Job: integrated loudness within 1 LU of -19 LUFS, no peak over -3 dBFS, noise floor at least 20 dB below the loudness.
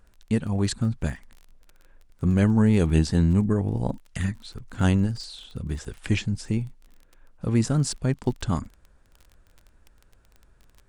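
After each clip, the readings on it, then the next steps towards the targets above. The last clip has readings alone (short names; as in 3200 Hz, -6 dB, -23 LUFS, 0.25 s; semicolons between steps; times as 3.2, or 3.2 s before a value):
ticks 25/s; loudness -25.0 LUFS; peak -7.5 dBFS; loudness target -19.0 LUFS
-> de-click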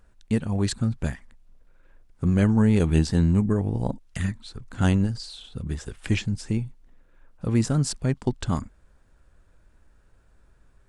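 ticks 0.092/s; loudness -25.0 LUFS; peak -7.5 dBFS; loudness target -19.0 LUFS
-> gain +6 dB; limiter -3 dBFS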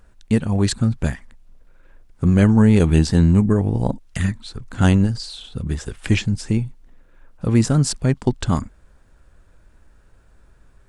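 loudness -19.0 LUFS; peak -3.0 dBFS; noise floor -53 dBFS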